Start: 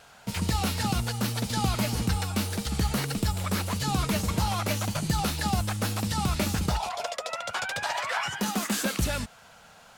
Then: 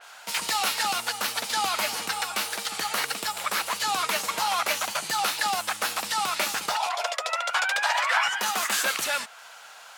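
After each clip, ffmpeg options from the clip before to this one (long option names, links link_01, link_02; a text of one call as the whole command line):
ffmpeg -i in.wav -af "highpass=880,adynamicequalizer=threshold=0.00501:dfrequency=3200:dqfactor=0.7:tfrequency=3200:tqfactor=0.7:attack=5:release=100:ratio=0.375:range=2:mode=cutabove:tftype=highshelf,volume=8dB" out.wav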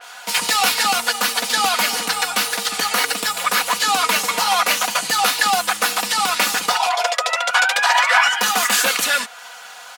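ffmpeg -i in.wav -af "aecho=1:1:4.1:0.74,volume=7dB" out.wav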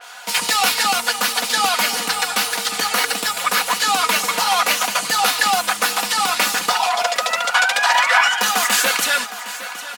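ffmpeg -i in.wav -af "aecho=1:1:761|1522|2283|3044|3805:0.188|0.0961|0.049|0.025|0.0127" out.wav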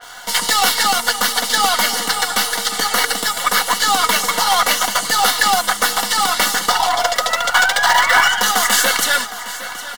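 ffmpeg -i in.wav -filter_complex "[0:a]asplit=2[link_01][link_02];[link_02]acrusher=bits=3:dc=4:mix=0:aa=0.000001,volume=-5.5dB[link_03];[link_01][link_03]amix=inputs=2:normalize=0,asoftclip=type=hard:threshold=-5.5dB,asuperstop=centerf=2500:order=4:qfactor=5.6" out.wav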